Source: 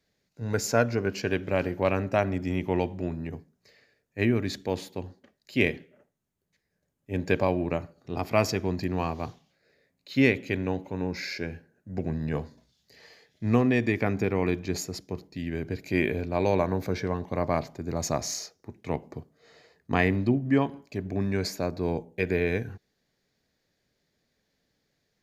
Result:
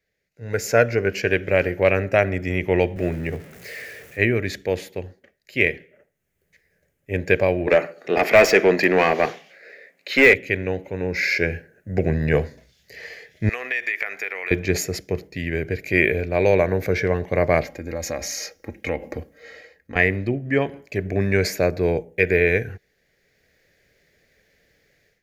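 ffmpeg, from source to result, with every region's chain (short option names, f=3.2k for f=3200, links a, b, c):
-filter_complex "[0:a]asettb=1/sr,asplit=3[a][b][c];[a]atrim=end=2.964[d];[b]atrim=start=2.96:end=4.19,asetpts=PTS-STARTPTS,afade=t=in:d=0.004:c=qsin,afade=t=out:st=1.226:d=0.004:c=qsin,aeval=exprs='val(0)+0.5*0.00447*sgn(val(0))':c=same,highpass=76[e];[c]atrim=start=4.186[f];[d][e]acrossfade=d=0.004:c1=hsin:c2=qsin[g];[g][f]acrossfade=d=0.004:c1=qsin:c2=hsin,asettb=1/sr,asplit=3[h][i][j];[h]atrim=end=7.674[k];[i]atrim=start=7.67:end=10.34,asetpts=PTS-STARTPTS,afade=t=in:d=0.004:c=qsin,afade=t=out:st=2.666:d=0.004:c=qsin,highpass=f=170:w=0.5412,highpass=f=170:w=1.3066,highshelf=f=5.6k:g=4,asplit=2[l][m];[m]highpass=f=720:p=1,volume=22dB,asoftclip=type=tanh:threshold=-9.5dB[n];[l][n]amix=inputs=2:normalize=0,lowpass=f=2k:p=1,volume=-6dB[o];[j]atrim=start=10.336[p];[k][o]acrossfade=d=0.004:c1=hsin:c2=qsin[q];[q][p]acrossfade=d=0.004:c1=qsin:c2=hsin,asettb=1/sr,asplit=3[r][s][t];[r]atrim=end=13.494[u];[s]atrim=start=13.49:end=14.51,asetpts=PTS-STARTPTS,afade=t=in:d=0.004:c=qsin,afade=t=out:st=1.016:d=0.004:c=qsin,highpass=1.3k,equalizer=f=6.4k:t=o:w=2.8:g=-4,acompressor=threshold=-37dB:ratio=6:attack=3.2:release=140:knee=1:detection=peak[v];[t]atrim=start=14.506[w];[u][v]acrossfade=d=0.004:c1=hsin:c2=qsin[x];[x][w]acrossfade=d=0.004:c1=qsin:c2=hsin,asettb=1/sr,asplit=3[y][z][aa];[y]atrim=end=17.624[ab];[z]atrim=start=17.62:end=19.96,asetpts=PTS-STARTPTS,afade=t=in:d=0.004:c=qsin,afade=t=out:st=2.336:d=0.004:c=qsin,equalizer=f=8.1k:t=o:w=0.35:g=-3.5,aecho=1:1:3.7:0.66,atrim=end_sample=103194,acompressor=threshold=-35dB:ratio=2.5:attack=3.2:release=140:knee=1:detection=peak[ac];[aa]atrim=start=19.956[ad];[ab][ac]acrossfade=d=0.004:c1=hsin:c2=qsin[ae];[ae][ad]acrossfade=d=0.004:c1=qsin:c2=hsin,deesser=0.5,equalizer=f=125:t=o:w=1:g=-3,equalizer=f=250:t=o:w=1:g=-9,equalizer=f=500:t=o:w=1:g=5,equalizer=f=1k:t=o:w=1:g=-12,equalizer=f=2k:t=o:w=1:g=9,equalizer=f=4k:t=o:w=1:g=-7,equalizer=f=8k:t=o:w=1:g=-3,dynaudnorm=f=380:g=3:m=15.5dB,volume=-1dB"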